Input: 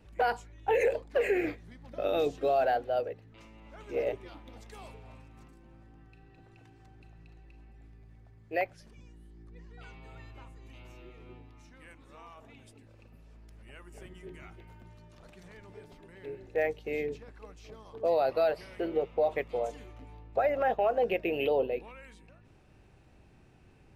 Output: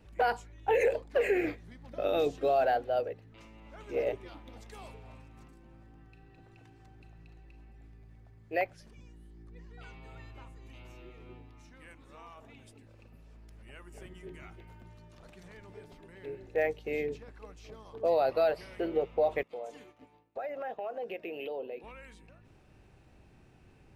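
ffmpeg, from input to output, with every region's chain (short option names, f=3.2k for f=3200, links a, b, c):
-filter_complex "[0:a]asettb=1/sr,asplit=3[a][b][c];[a]atrim=end=19.434[d];[b]atrim=start=19.43:end=21.84,asetpts=PTS-STARTPTS,afade=t=in:d=0.004:c=qsin,afade=t=out:st=2.406:d=0.004:c=qsin,highpass=200,agate=range=-33dB:threshold=-50dB:ratio=3:release=100:detection=peak,acompressor=threshold=-43dB:ratio=2:attack=3.2:release=140:knee=1:detection=peak[e];[c]atrim=start=21.836[f];[d][e]acrossfade=d=0.004:c1=hsin:c2=qsin[g];[g][f]acrossfade=d=0.004:c1=qsin:c2=hsin"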